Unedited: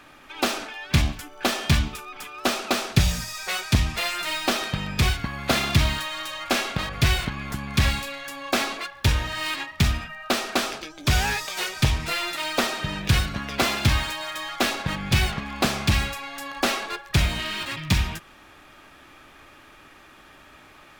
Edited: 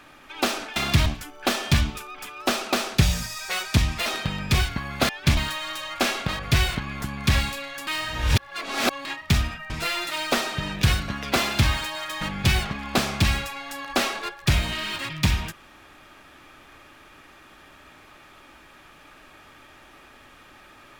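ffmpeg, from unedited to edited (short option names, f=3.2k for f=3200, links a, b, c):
-filter_complex "[0:a]asplit=10[a][b][c][d][e][f][g][h][i][j];[a]atrim=end=0.762[k];[b]atrim=start=5.568:end=5.872[l];[c]atrim=start=1.038:end=4.042[m];[d]atrim=start=4.538:end=5.572[n];[e]atrim=start=0.758:end=1.042[o];[f]atrim=start=5.868:end=8.372[p];[g]atrim=start=8.368:end=9.552,asetpts=PTS-STARTPTS,areverse[q];[h]atrim=start=9.548:end=10.202[r];[i]atrim=start=11.958:end=14.472[s];[j]atrim=start=14.878[t];[k][l]acrossfade=d=0.004:c1=hsin:c2=hsin[u];[u][m]acrossfade=d=0.004:c1=hsin:c2=hsin[v];[v][n]acrossfade=d=0.004:c1=hsin:c2=hsin[w];[w][o]acrossfade=d=0.004:c1=hsin:c2=hsin[x];[x][p]acrossfade=d=0.004:c1=hsin:c2=hsin[y];[y][q]acrossfade=d=0.004:c1=hsin:c2=hsin[z];[z][r]acrossfade=d=0.004:c1=hsin:c2=hsin[aa];[aa][s]acrossfade=d=0.004:c1=hsin:c2=hsin[ab];[ab][t]acrossfade=d=0.004:c1=hsin:c2=hsin"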